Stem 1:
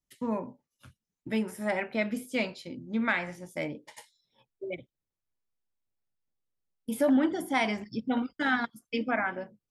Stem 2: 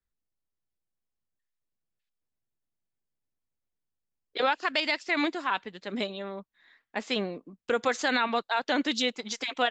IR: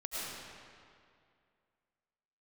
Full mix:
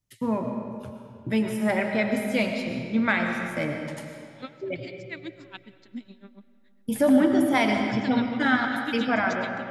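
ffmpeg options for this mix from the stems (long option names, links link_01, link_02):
-filter_complex "[0:a]equalizer=frequency=110:width_type=o:width=0.63:gain=14.5,volume=1dB,asplit=2[link_01][link_02];[link_02]volume=-3.5dB[link_03];[1:a]equalizer=frequency=250:width_type=o:width=1:gain=9,equalizer=frequency=500:width_type=o:width=1:gain=-10,equalizer=frequency=1000:width_type=o:width=1:gain=-7,aeval=exprs='val(0)*pow(10,-30*(0.5-0.5*cos(2*PI*7.2*n/s))/20)':channel_layout=same,volume=-6dB,asplit=2[link_04][link_05];[link_05]volume=-18dB[link_06];[2:a]atrim=start_sample=2205[link_07];[link_03][link_06]amix=inputs=2:normalize=0[link_08];[link_08][link_07]afir=irnorm=-1:irlink=0[link_09];[link_01][link_04][link_09]amix=inputs=3:normalize=0"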